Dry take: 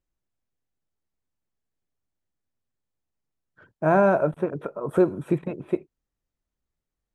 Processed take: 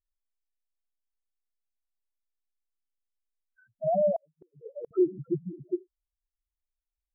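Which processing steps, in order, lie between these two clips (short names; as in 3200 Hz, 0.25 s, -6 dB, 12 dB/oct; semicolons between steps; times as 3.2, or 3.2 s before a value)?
loudest bins only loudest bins 2; 4.16–4.91 flipped gate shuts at -27 dBFS, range -38 dB; gain -2 dB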